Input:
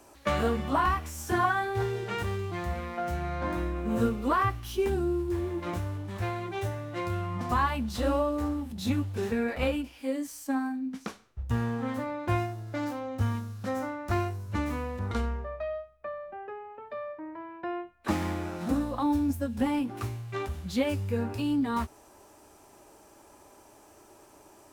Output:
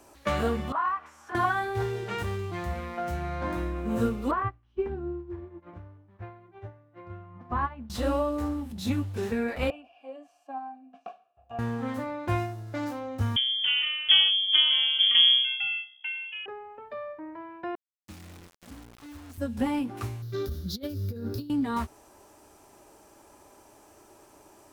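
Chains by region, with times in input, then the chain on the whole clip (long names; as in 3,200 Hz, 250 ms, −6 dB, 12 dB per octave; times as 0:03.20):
0:00.72–0:01.35: upward compression, threshold −28 dBFS + resonant band-pass 1,200 Hz, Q 2
0:04.31–0:07.90: low-pass filter 1,800 Hz + expander for the loud parts 2.5 to 1, over −40 dBFS
0:09.70–0:11.59: formant filter a + low-shelf EQ 350 Hz +5.5 dB + hollow resonant body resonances 700/1,700/2,800 Hz, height 14 dB, ringing for 35 ms
0:13.36–0:16.46: low-shelf EQ 420 Hz +10.5 dB + voice inversion scrambler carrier 3,300 Hz
0:17.75–0:19.38: guitar amp tone stack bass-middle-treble 6-0-2 + bit-depth reduction 8 bits, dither none + highs frequency-modulated by the lows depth 0.18 ms
0:20.22–0:21.50: drawn EQ curve 220 Hz 0 dB, 330 Hz +3 dB, 500 Hz −1 dB, 860 Hz −19 dB, 1,400 Hz −5 dB, 2,600 Hz −17 dB, 3,800 Hz +3 dB, 5,400 Hz +4 dB, 8,100 Hz −11 dB, 15,000 Hz +11 dB + compressor whose output falls as the input rises −32 dBFS, ratio −0.5
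whole clip: no processing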